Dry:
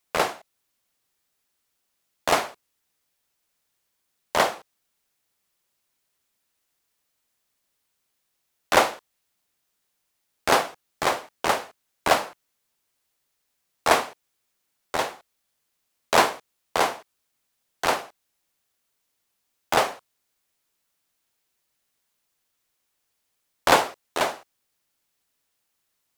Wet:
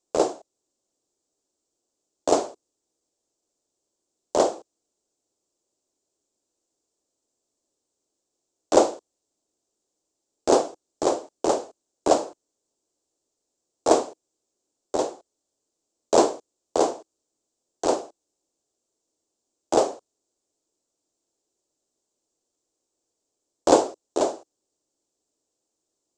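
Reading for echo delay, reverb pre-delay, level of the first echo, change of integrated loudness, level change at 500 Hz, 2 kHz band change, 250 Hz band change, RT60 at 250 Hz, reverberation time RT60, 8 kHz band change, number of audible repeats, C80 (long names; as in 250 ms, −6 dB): no echo audible, no reverb audible, no echo audible, 0.0 dB, +5.0 dB, −15.0 dB, +7.5 dB, no reverb audible, no reverb audible, +0.5 dB, no echo audible, no reverb audible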